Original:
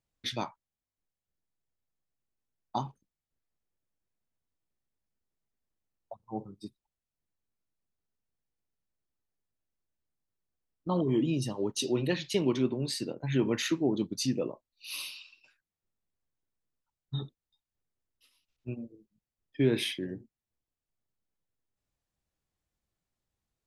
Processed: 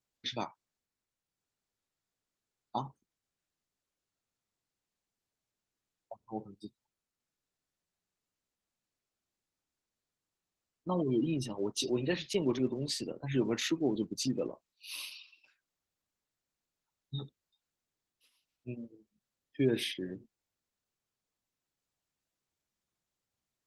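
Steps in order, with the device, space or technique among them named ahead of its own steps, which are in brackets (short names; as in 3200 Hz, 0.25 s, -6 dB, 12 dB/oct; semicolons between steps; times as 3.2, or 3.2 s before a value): noise-suppressed video call (HPF 130 Hz 6 dB/oct; spectral gate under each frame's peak -30 dB strong; gain -2 dB; Opus 16 kbps 48000 Hz)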